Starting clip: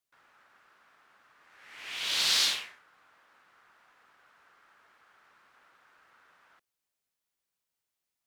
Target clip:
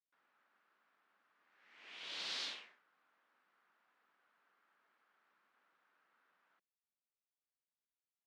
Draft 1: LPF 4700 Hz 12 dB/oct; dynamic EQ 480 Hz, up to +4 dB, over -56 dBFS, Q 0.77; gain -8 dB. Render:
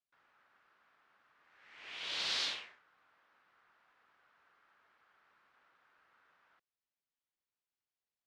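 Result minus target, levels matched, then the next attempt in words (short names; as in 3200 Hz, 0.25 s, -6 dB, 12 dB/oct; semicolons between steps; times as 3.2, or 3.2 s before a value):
125 Hz band +3.5 dB
LPF 4700 Hz 12 dB/oct; dynamic EQ 480 Hz, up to +4 dB, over -56 dBFS, Q 0.77; ladder high-pass 160 Hz, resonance 30%; gain -8 dB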